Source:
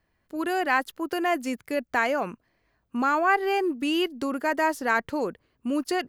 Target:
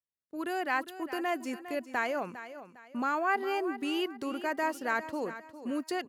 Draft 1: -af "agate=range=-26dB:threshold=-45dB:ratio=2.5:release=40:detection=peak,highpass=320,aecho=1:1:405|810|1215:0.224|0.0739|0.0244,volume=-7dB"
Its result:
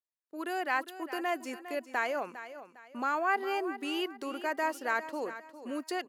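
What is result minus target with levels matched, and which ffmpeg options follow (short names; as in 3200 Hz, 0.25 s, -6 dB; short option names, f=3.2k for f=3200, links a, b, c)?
125 Hz band -9.0 dB
-af "agate=range=-26dB:threshold=-45dB:ratio=2.5:release=40:detection=peak,highpass=83,aecho=1:1:405|810|1215:0.224|0.0739|0.0244,volume=-7dB"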